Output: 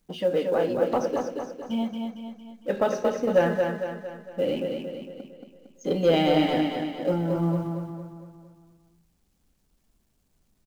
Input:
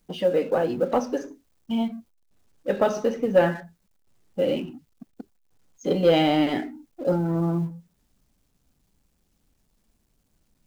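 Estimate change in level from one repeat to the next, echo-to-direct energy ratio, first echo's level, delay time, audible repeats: -6.0 dB, -3.5 dB, -4.5 dB, 0.228 s, 5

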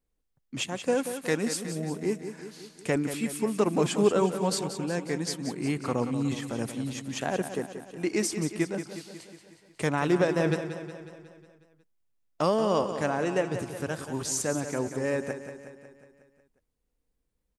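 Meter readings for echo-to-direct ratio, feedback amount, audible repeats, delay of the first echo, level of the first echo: -8.0 dB, 58%, 6, 0.182 s, -10.0 dB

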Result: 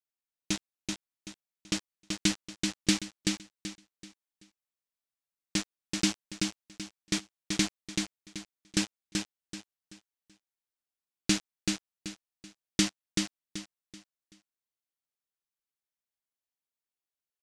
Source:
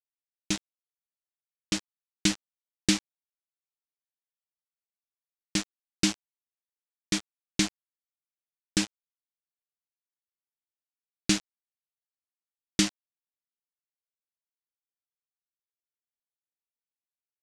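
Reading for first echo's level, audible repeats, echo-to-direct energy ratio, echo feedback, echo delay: -4.0 dB, 4, -3.5 dB, 31%, 0.382 s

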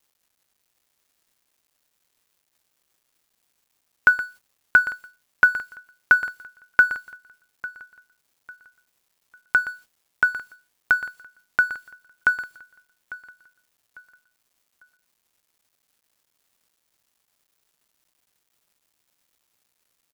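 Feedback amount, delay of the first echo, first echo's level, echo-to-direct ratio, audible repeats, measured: 32%, 0.849 s, -18.0 dB, -17.5 dB, 2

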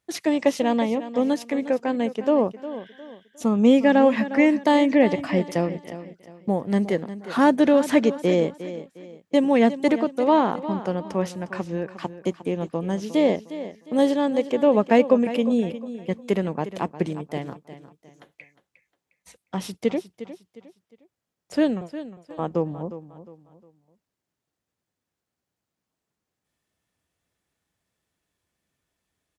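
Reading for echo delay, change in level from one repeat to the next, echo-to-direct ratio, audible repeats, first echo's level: 0.357 s, -9.5 dB, -13.0 dB, 3, -13.5 dB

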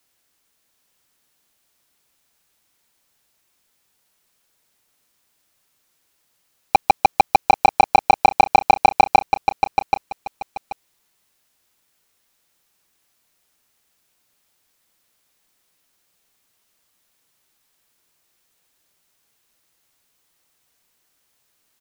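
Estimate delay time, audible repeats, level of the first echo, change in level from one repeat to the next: 0.782 s, 2, -6.5 dB, -11.5 dB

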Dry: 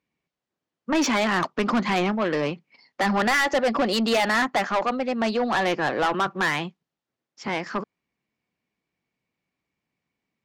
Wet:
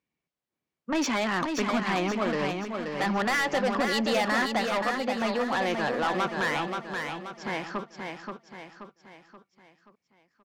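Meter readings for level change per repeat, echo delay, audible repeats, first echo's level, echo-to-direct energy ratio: -6.5 dB, 0.529 s, 5, -5.0 dB, -4.0 dB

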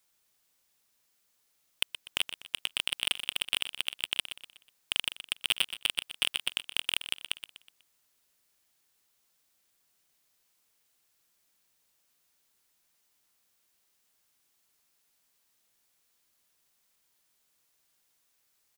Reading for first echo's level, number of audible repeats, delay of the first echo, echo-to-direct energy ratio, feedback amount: -11.5 dB, 4, 0.123 s, -10.5 dB, 41%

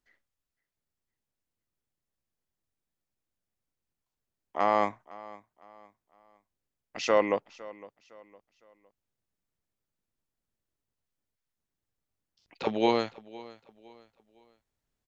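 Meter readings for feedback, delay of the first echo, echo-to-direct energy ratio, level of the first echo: 36%, 0.509 s, -19.5 dB, -20.0 dB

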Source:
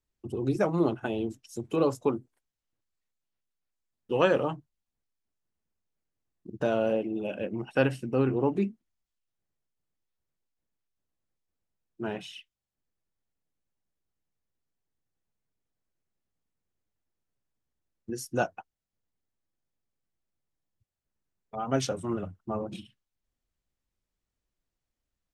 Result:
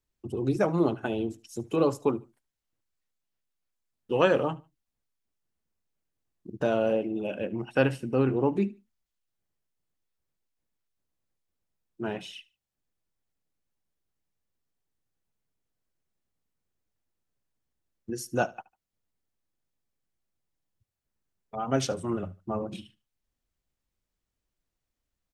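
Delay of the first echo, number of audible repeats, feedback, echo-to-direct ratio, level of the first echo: 74 ms, 2, 26%, -21.0 dB, -21.5 dB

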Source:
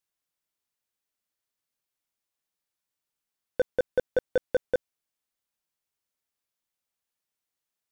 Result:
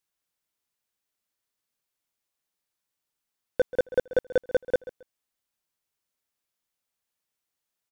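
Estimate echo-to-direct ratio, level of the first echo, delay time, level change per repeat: -17.0 dB, -17.0 dB, 0.135 s, -12.5 dB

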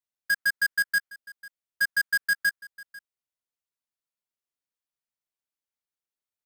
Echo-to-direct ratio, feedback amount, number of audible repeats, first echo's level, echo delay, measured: -20.0 dB, no steady repeat, 1, -20.0 dB, 0.495 s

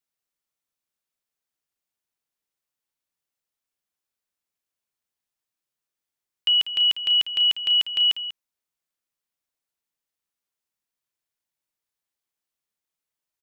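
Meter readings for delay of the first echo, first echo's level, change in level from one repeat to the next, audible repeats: 0.193 s, -12.5 dB, no steady repeat, 1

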